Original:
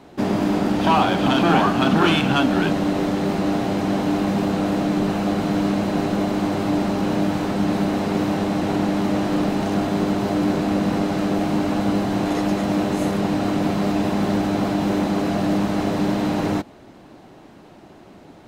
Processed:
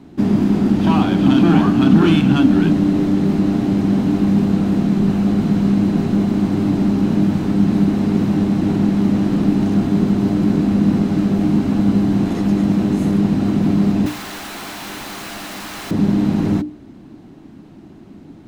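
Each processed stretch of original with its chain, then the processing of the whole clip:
14.06–15.91 HPF 1200 Hz + companded quantiser 2-bit
whole clip: resonant low shelf 390 Hz +10 dB, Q 1.5; notches 60/120/180/240/300/360/420/480/540/600 Hz; gain -3.5 dB

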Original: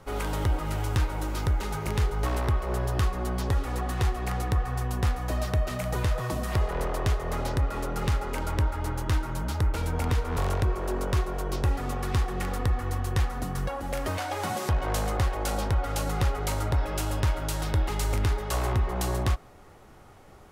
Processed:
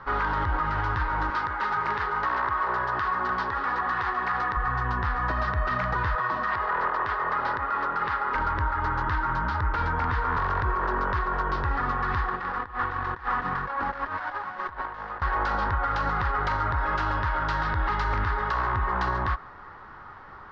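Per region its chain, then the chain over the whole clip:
1.3–4.57 HPF 380 Hz 6 dB/oct + echo 0.298 s -14 dB
6.15–8.35 HPF 390 Hz 6 dB/oct + bell 9900 Hz -9.5 dB 0.98 oct
12.28–15.22 low shelf 170 Hz -11 dB + negative-ratio compressor -37 dBFS, ratio -0.5 + running maximum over 9 samples
whole clip: steep low-pass 4800 Hz 36 dB/oct; band shelf 1300 Hz +15 dB 1.3 oct; limiter -17.5 dBFS

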